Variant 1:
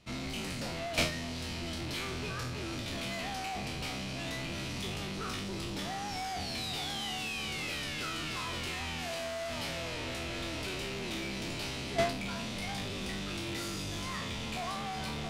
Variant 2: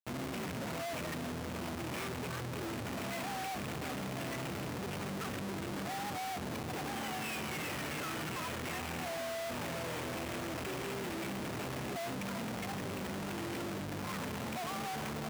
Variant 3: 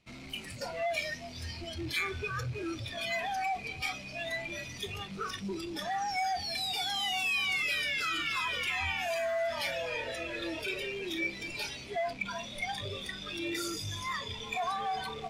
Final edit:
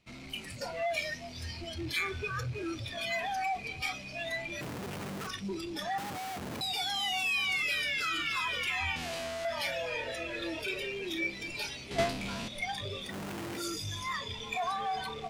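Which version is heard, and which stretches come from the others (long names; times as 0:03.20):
3
0:04.61–0:05.27: punch in from 2
0:05.98–0:06.61: punch in from 2
0:08.96–0:09.45: punch in from 1
0:11.91–0:12.48: punch in from 1
0:13.10–0:13.59: punch in from 2, crossfade 0.10 s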